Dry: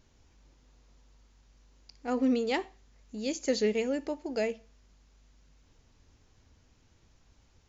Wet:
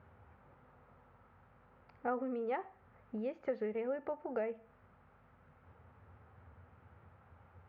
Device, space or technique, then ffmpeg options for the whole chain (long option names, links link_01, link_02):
bass amplifier: -af "acompressor=threshold=-41dB:ratio=5,highpass=frequency=83:width=0.5412,highpass=frequency=83:width=1.3066,equalizer=frequency=86:width_type=q:width=4:gain=7,equalizer=frequency=300:width_type=q:width=4:gain=-10,equalizer=frequency=530:width_type=q:width=4:gain=4,equalizer=frequency=810:width_type=q:width=4:gain=6,equalizer=frequency=1300:width_type=q:width=4:gain=9,lowpass=frequency=2000:width=0.5412,lowpass=frequency=2000:width=1.3066,volume=4.5dB"